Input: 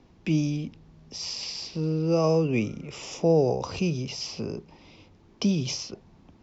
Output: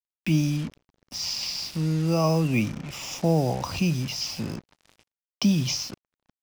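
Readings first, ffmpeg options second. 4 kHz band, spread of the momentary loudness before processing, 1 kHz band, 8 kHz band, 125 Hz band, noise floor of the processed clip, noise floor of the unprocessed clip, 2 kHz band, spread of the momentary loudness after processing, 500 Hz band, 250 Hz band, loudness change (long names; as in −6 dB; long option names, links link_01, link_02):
+4.0 dB, 15 LU, +2.5 dB, can't be measured, +3.5 dB, below −85 dBFS, −56 dBFS, +4.0 dB, 12 LU, −4.0 dB, +2.0 dB, +1.0 dB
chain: -af "equalizer=frequency=430:width=2.6:gain=-14.5,acrusher=bits=6:mix=0:aa=0.5,volume=4dB"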